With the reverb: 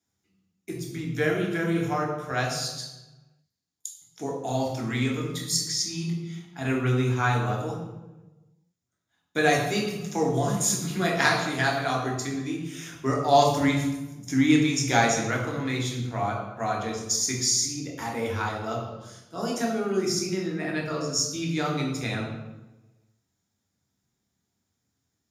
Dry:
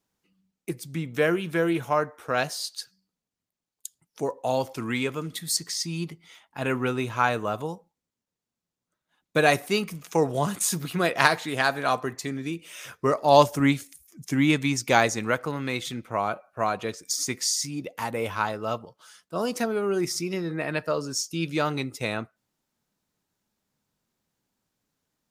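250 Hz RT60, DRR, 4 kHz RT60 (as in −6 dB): 1.4 s, −1.5 dB, 0.75 s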